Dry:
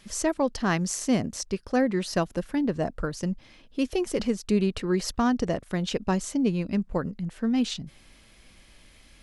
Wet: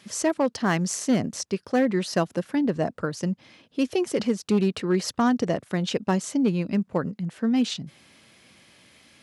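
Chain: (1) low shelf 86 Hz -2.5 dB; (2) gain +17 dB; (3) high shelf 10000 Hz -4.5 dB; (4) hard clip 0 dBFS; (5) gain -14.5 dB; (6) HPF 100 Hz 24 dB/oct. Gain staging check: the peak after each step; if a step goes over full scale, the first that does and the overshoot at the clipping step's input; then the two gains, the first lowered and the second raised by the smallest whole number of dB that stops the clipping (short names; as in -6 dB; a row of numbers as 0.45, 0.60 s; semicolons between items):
-11.5, +5.5, +5.5, 0.0, -14.5, -10.0 dBFS; step 2, 5.5 dB; step 2 +11 dB, step 5 -8.5 dB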